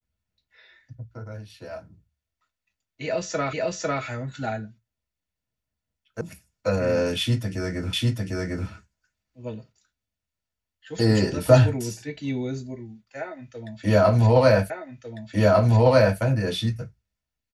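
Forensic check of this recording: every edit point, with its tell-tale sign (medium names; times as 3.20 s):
3.53 s: repeat of the last 0.5 s
6.21 s: sound stops dead
7.93 s: repeat of the last 0.75 s
14.70 s: repeat of the last 1.5 s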